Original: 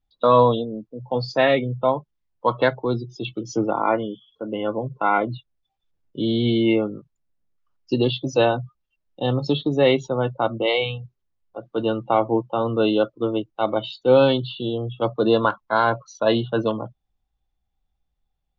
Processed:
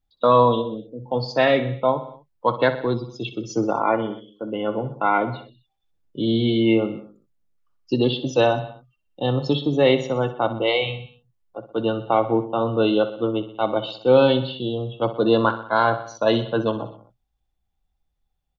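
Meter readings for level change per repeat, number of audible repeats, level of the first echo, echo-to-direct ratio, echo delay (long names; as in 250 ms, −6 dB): −4.5 dB, 4, −13.0 dB, −11.0 dB, 62 ms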